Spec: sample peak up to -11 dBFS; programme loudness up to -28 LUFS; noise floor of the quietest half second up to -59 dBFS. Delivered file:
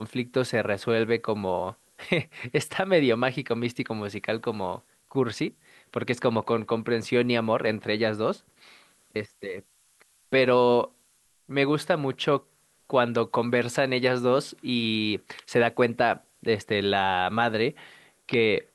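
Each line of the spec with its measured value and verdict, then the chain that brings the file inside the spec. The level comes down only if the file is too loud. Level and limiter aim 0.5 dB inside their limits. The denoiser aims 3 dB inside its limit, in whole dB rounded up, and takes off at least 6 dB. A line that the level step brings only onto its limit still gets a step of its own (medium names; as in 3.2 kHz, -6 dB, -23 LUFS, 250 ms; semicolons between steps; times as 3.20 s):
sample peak -6.5 dBFS: fail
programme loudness -26.0 LUFS: fail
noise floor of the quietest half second -65 dBFS: pass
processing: trim -2.5 dB; peak limiter -11.5 dBFS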